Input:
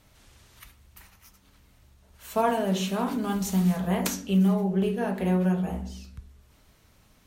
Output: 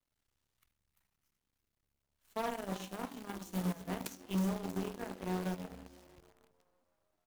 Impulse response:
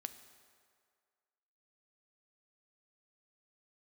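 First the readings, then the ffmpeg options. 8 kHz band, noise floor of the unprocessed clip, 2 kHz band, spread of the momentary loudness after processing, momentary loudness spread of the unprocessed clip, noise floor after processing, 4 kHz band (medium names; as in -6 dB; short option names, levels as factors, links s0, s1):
-13.0 dB, -61 dBFS, -10.5 dB, 10 LU, 9 LU, under -85 dBFS, -11.5 dB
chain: -filter_complex "[0:a]asplit=2[s0][s1];[s1]asplit=6[s2][s3][s4][s5][s6][s7];[s2]adelay=318,afreqshift=88,volume=0.237[s8];[s3]adelay=636,afreqshift=176,volume=0.138[s9];[s4]adelay=954,afreqshift=264,volume=0.0794[s10];[s5]adelay=1272,afreqshift=352,volume=0.0462[s11];[s6]adelay=1590,afreqshift=440,volume=0.0269[s12];[s7]adelay=1908,afreqshift=528,volume=0.0155[s13];[s8][s9][s10][s11][s12][s13]amix=inputs=6:normalize=0[s14];[s0][s14]amix=inputs=2:normalize=0,acrusher=bits=7:dc=4:mix=0:aa=0.000001,aeval=exprs='0.299*(cos(1*acos(clip(val(0)/0.299,-1,1)))-cos(1*PI/2))+0.0944*(cos(3*acos(clip(val(0)/0.299,-1,1)))-cos(3*PI/2))':c=same,asoftclip=type=hard:threshold=0.0447"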